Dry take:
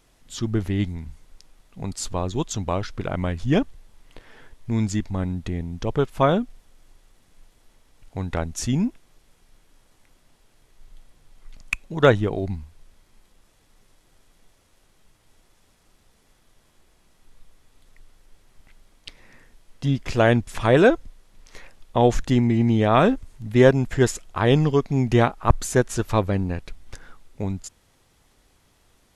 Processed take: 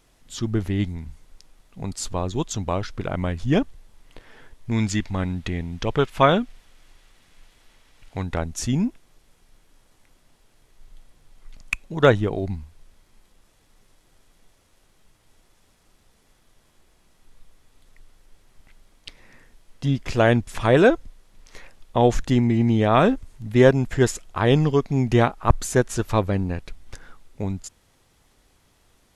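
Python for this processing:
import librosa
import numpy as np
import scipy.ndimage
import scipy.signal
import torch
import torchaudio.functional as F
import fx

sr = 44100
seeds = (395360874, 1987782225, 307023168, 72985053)

y = fx.peak_eq(x, sr, hz=2500.0, db=8.0, octaves=2.4, at=(4.71, 8.23))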